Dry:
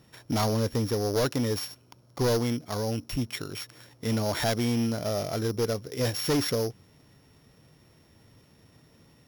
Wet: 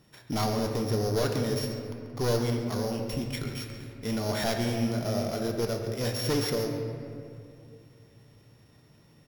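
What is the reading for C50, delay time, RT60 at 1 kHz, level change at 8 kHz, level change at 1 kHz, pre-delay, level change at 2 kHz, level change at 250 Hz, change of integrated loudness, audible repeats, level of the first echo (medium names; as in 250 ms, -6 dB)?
4.0 dB, 137 ms, 2.2 s, -2.5 dB, -1.0 dB, 3 ms, -1.0 dB, -1.0 dB, -1.5 dB, 1, -13.0 dB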